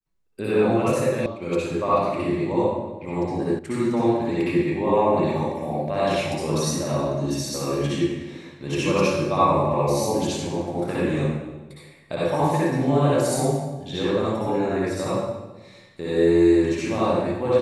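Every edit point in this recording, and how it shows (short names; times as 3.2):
1.26 sound cut off
3.59 sound cut off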